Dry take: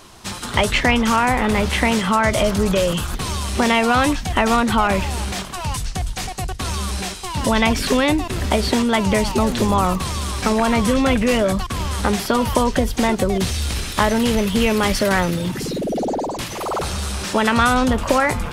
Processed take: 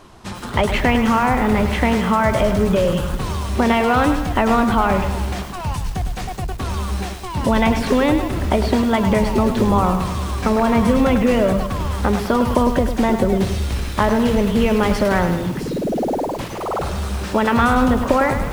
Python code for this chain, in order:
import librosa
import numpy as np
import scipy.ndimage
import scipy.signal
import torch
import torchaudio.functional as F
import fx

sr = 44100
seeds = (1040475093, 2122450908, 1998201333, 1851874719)

y = fx.high_shelf(x, sr, hz=2400.0, db=-12.0)
y = fx.echo_crushed(y, sr, ms=103, feedback_pct=55, bits=6, wet_db=-8.0)
y = y * 10.0 ** (1.5 / 20.0)